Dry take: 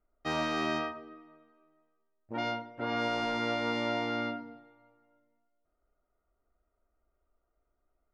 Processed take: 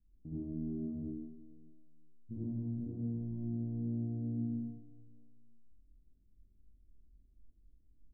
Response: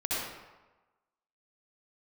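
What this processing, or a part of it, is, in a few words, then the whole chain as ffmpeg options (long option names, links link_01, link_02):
club heard from the street: -filter_complex "[0:a]alimiter=level_in=9.5dB:limit=-24dB:level=0:latency=1:release=63,volume=-9.5dB,lowpass=frequency=220:width=0.5412,lowpass=frequency=220:width=1.3066[link_01];[1:a]atrim=start_sample=2205[link_02];[link_01][link_02]afir=irnorm=-1:irlink=0,volume=8.5dB"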